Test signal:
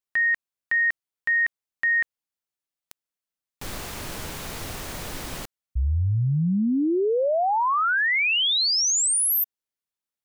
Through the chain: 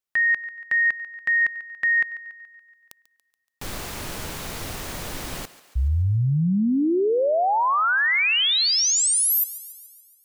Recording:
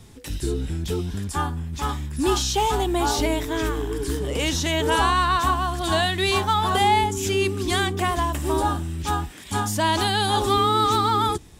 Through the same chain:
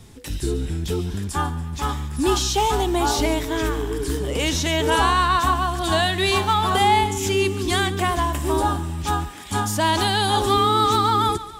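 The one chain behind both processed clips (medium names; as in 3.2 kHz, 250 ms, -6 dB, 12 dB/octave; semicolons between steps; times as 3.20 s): thinning echo 142 ms, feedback 57%, high-pass 340 Hz, level -16 dB; trim +1.5 dB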